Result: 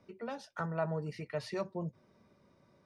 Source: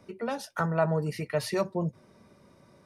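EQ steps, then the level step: low-pass 6 kHz 12 dB/octave; -8.5 dB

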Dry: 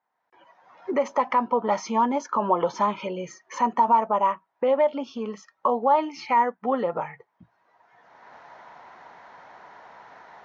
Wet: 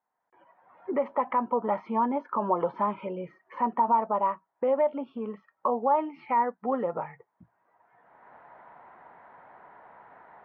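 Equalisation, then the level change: low-pass 2.4 kHz 12 dB/octave; distance through air 370 m; -2.5 dB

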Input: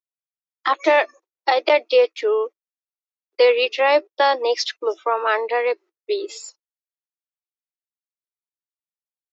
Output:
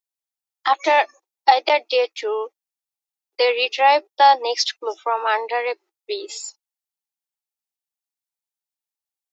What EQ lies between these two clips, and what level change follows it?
peaking EQ 820 Hz +12 dB 0.31 oct; treble shelf 2.3 kHz +11 dB; -5.5 dB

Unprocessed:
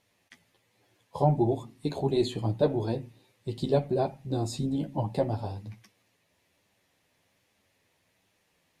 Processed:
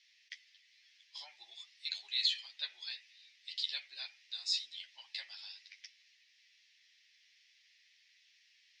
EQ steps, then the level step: Chebyshev band-pass 1.9–5.4 kHz, order 3; treble shelf 4.4 kHz +11.5 dB; +4.0 dB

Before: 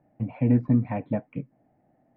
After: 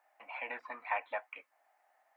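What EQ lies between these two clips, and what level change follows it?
high-pass 1 kHz 24 dB/octave; peaking EQ 1.8 kHz -2 dB; +9.0 dB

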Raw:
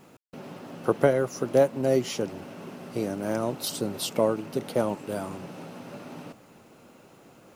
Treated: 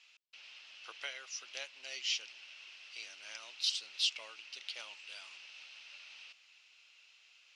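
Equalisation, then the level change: resonant high-pass 2.7 kHz, resonance Q 3.1; four-pole ladder low-pass 6.3 kHz, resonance 40%; +1.5 dB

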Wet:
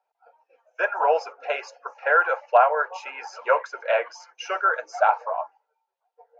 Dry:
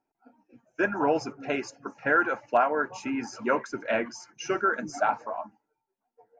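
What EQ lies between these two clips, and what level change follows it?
Chebyshev high-pass 490 Hz, order 5; low-pass 3.6 kHz 12 dB/octave; peaking EQ 1.9 kHz -4.5 dB 0.56 oct; +7.0 dB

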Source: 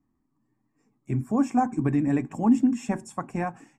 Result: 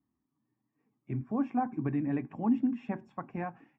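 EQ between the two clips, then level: high-pass 64 Hz; low-pass 3.2 kHz 24 dB/octave; -7.5 dB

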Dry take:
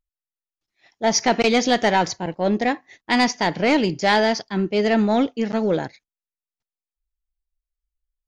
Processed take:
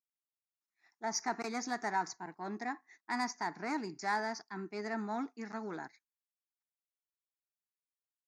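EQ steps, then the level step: high-pass 360 Hz 12 dB/octave; static phaser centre 1.3 kHz, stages 4; dynamic bell 2.9 kHz, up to -7 dB, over -40 dBFS, Q 0.8; -9.0 dB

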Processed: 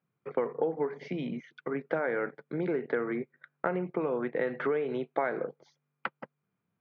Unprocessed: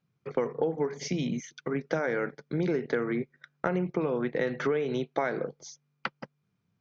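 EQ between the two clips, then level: high-pass 450 Hz 6 dB/octave; distance through air 470 m; treble shelf 6.3 kHz -6 dB; +3.0 dB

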